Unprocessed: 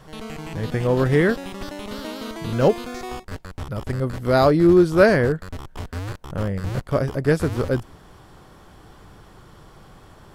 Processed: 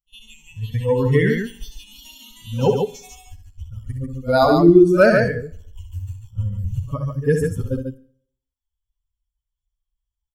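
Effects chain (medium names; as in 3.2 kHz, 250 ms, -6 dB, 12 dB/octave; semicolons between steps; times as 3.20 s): expander on every frequency bin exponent 3; pre-echo 56 ms -23 dB; in parallel at +1.5 dB: compression 10:1, threshold -31 dBFS, peak gain reduction 19 dB; on the sum: hard clipper -5 dBFS, distortion -47 dB; on a send: loudspeakers at several distances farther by 22 m -7 dB, 49 m -5 dB; on the sum: Schroeder reverb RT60 0.61 s, combs from 30 ms, DRR 17 dB; trim +3 dB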